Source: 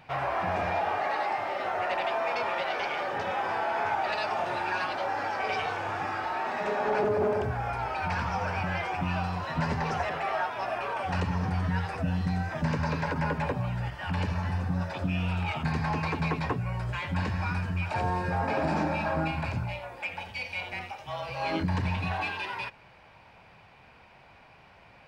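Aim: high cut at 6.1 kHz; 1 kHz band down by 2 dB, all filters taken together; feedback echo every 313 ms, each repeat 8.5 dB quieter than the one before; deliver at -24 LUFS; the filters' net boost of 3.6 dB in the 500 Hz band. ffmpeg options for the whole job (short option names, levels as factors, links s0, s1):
-af "lowpass=6100,equalizer=f=500:t=o:g=6.5,equalizer=f=1000:t=o:g=-5.5,aecho=1:1:313|626|939|1252:0.376|0.143|0.0543|0.0206,volume=1.78"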